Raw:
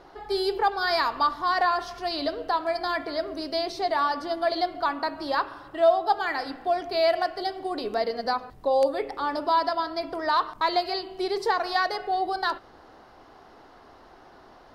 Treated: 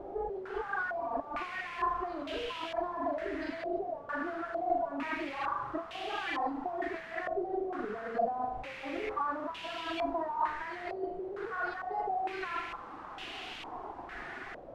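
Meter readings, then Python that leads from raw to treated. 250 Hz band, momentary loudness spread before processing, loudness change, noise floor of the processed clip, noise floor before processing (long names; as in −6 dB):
−5.0 dB, 7 LU, −10.0 dB, −46 dBFS, −52 dBFS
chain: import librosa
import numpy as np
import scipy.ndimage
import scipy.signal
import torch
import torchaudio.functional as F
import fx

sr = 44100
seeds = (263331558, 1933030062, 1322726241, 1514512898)

p1 = fx.hpss_only(x, sr, part='harmonic')
p2 = p1 + fx.room_flutter(p1, sr, wall_m=6.8, rt60_s=0.76, dry=0)
p3 = fx.dereverb_blind(p2, sr, rt60_s=0.83)
p4 = fx.level_steps(p3, sr, step_db=18)
p5 = p3 + (p4 * 10.0 ** (-1.0 / 20.0))
p6 = fx.peak_eq(p5, sr, hz=690.0, db=-2.5, octaves=0.71)
p7 = fx.over_compress(p6, sr, threshold_db=-34.0, ratio=-1.0)
p8 = fx.quant_dither(p7, sr, seeds[0], bits=6, dither='triangular')
p9 = fx.filter_held_lowpass(p8, sr, hz=2.2, low_hz=580.0, high_hz=2900.0)
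y = p9 * 10.0 ** (-7.5 / 20.0)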